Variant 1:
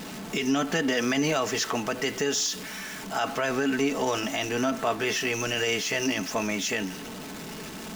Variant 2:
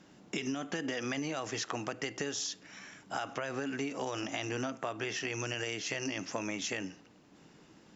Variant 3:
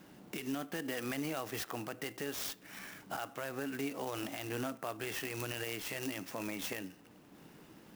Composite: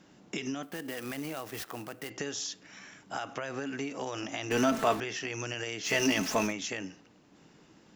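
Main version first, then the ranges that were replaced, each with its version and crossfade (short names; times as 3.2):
2
0.63–2.1 from 3
4.51–5 from 1
5.88–6.49 from 1, crossfade 0.10 s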